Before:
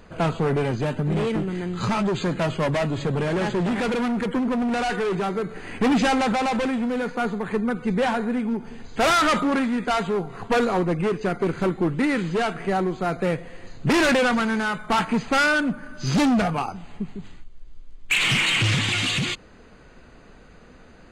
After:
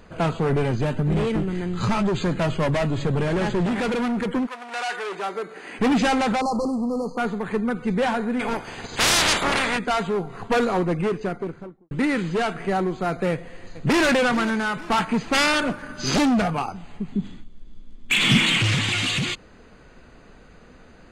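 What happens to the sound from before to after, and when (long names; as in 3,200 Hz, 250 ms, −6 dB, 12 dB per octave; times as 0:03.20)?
0:00.49–0:03.66: low-shelf EQ 73 Hz +10.5 dB
0:04.45–0:05.78: high-pass filter 1,200 Hz → 280 Hz
0:06.41–0:07.18: linear-phase brick-wall band-stop 1,300–4,100 Hz
0:08.39–0:09.77: ceiling on every frequency bin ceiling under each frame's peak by 27 dB
0:10.99–0:11.91: fade out and dull
0:13.31–0:14.06: delay throw 440 ms, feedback 45%, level −15 dB
0:15.33–0:16.17: ceiling on every frequency bin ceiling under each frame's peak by 15 dB
0:17.12–0:18.58: hollow resonant body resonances 220/3,400 Hz, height 14 dB, ringing for 30 ms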